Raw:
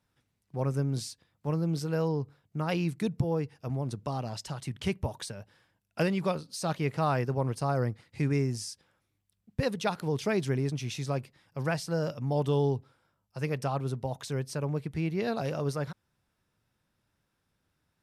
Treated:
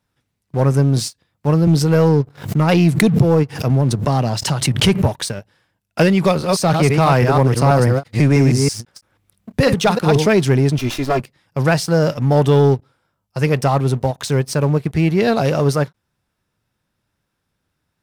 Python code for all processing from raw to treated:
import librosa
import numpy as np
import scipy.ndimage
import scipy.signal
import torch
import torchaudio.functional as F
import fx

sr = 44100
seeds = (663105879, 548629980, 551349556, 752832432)

y = fx.chain(x, sr, fx.highpass(hz=89.0, slope=24),
    fx.low_shelf(hz=360.0, db=3.0),
    fx.pre_swell(db_per_s=110.0), at=(1.67, 5.19))
y = fx.chain(y, sr, fx.reverse_delay(ms=163, wet_db=-5.0),
    fx.band_squash(depth_pct=40), at=(6.24, 10.26))
y = fx.chain(y, sr, fx.lower_of_two(delay_ms=2.9),
    fx.peak_eq(hz=8000.0, db=-6.0, octaves=0.94), at=(10.78, 11.2))
y = fx.leveller(y, sr, passes=2)
y = fx.end_taper(y, sr, db_per_s=510.0)
y = y * 10.0 ** (8.0 / 20.0)